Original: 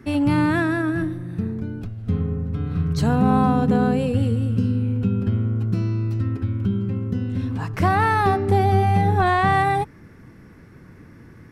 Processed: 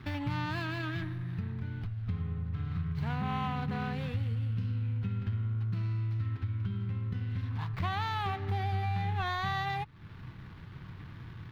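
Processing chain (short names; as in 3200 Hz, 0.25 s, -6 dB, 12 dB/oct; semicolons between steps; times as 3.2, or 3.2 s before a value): median filter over 25 samples; graphic EQ 125/250/500/1000/2000/4000/8000 Hz +5/-9/-9/+5/+7/+7/-10 dB; compressor 2.5:1, threshold -37 dBFS, peak gain reduction 15.5 dB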